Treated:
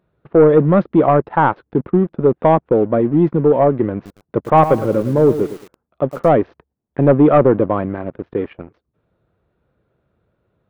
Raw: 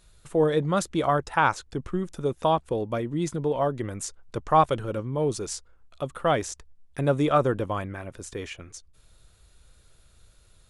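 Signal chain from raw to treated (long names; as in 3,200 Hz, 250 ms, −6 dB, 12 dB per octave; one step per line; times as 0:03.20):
high-pass filter 180 Hz 12 dB per octave
tilt shelving filter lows +7 dB
leveller curve on the samples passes 2
Gaussian smoothing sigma 3.6 samples
0:03.94–0:06.34: feedback echo at a low word length 109 ms, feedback 35%, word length 6 bits, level −11 dB
level +3 dB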